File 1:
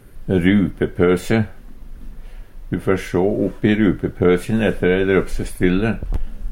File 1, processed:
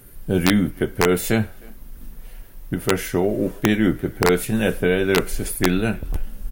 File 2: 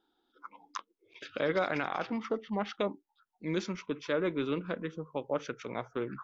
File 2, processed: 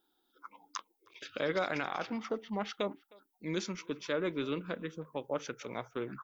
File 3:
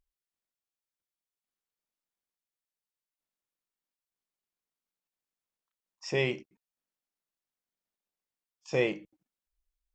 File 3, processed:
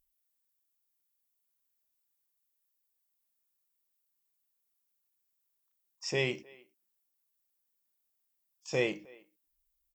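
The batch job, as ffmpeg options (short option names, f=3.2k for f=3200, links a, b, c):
-filter_complex "[0:a]aemphasis=mode=production:type=50fm,asplit=2[a][b];[b]adelay=310,highpass=300,lowpass=3.4k,asoftclip=type=hard:threshold=-11dB,volume=-24dB[c];[a][c]amix=inputs=2:normalize=0,aeval=exprs='(mod(1.5*val(0)+1,2)-1)/1.5':c=same,volume=-2.5dB"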